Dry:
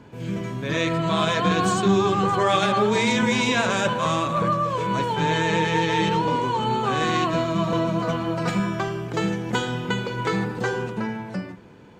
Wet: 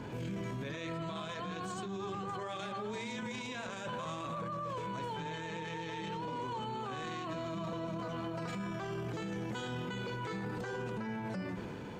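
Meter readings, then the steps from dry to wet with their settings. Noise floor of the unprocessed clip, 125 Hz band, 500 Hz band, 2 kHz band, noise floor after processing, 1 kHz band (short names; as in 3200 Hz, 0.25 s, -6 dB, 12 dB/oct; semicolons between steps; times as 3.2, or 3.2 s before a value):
-38 dBFS, -15.0 dB, -16.5 dB, -17.0 dB, -42 dBFS, -17.0 dB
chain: negative-ratio compressor -26 dBFS, ratio -0.5; transient shaper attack -8 dB, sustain +2 dB; limiter -32 dBFS, peak gain reduction 19 dB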